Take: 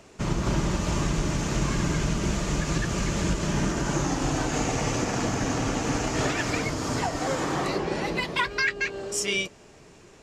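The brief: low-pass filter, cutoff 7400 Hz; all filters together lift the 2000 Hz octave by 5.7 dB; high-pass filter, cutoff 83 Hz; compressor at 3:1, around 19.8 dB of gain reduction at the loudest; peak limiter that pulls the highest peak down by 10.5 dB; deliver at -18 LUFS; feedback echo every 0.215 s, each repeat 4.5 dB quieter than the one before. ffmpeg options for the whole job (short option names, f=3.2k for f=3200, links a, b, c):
-af "highpass=83,lowpass=7.4k,equalizer=f=2k:t=o:g=7,acompressor=threshold=-44dB:ratio=3,alimiter=level_in=13dB:limit=-24dB:level=0:latency=1,volume=-13dB,aecho=1:1:215|430|645|860|1075|1290|1505|1720|1935:0.596|0.357|0.214|0.129|0.0772|0.0463|0.0278|0.0167|0.01,volume=25.5dB"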